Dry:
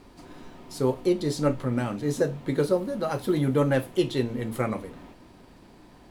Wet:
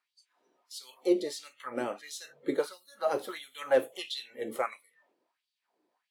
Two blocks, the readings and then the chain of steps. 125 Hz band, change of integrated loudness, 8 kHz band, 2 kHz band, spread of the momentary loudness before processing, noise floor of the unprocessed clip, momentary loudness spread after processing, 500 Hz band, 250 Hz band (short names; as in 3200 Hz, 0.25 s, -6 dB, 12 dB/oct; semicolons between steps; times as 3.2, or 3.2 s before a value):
-29.5 dB, -6.5 dB, -3.5 dB, -4.0 dB, 6 LU, -52 dBFS, 14 LU, -5.5 dB, -10.5 dB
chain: spectral noise reduction 22 dB; LFO high-pass sine 1.5 Hz 370–4000 Hz; gain -4.5 dB